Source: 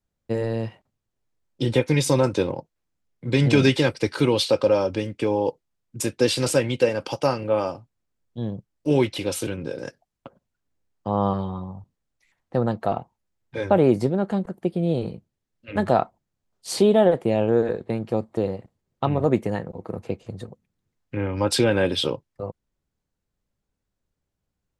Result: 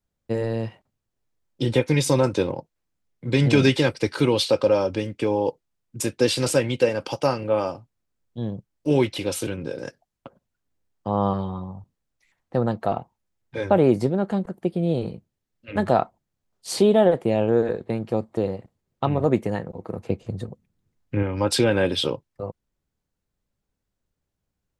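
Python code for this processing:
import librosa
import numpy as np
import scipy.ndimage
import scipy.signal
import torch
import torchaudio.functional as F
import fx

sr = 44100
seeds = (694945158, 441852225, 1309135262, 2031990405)

y = fx.low_shelf(x, sr, hz=360.0, db=6.0, at=(20.1, 21.23))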